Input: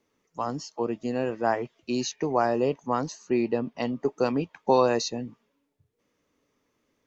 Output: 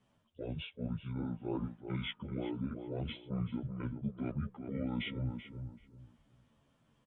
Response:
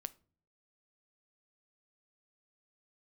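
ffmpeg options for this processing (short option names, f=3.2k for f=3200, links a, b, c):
-filter_complex "[0:a]areverse,acompressor=threshold=-39dB:ratio=5,areverse,asetrate=22696,aresample=44100,atempo=1.94306,asplit=2[a][b];[b]adelay=384,lowpass=f=1.4k:p=1,volume=-6.5dB,asplit=2[c][d];[d]adelay=384,lowpass=f=1.4k:p=1,volume=0.27,asplit=2[e][f];[f]adelay=384,lowpass=f=1.4k:p=1,volume=0.27[g];[a][c][e][g]amix=inputs=4:normalize=0,asplit=2[h][i];[i]adelay=11.6,afreqshift=-2.7[j];[h][j]amix=inputs=2:normalize=1,volume=5dB"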